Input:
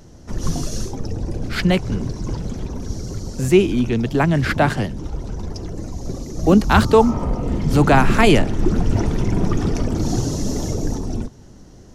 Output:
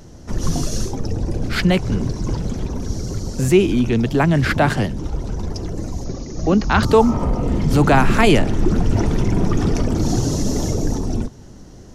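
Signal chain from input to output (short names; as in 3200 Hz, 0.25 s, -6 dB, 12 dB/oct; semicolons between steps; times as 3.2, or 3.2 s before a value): in parallel at -1 dB: limiter -14 dBFS, peak gain reduction 10.5 dB; 6.04–6.83 on the sum: rippled Chebyshev low-pass 6800 Hz, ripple 3 dB; gain -2.5 dB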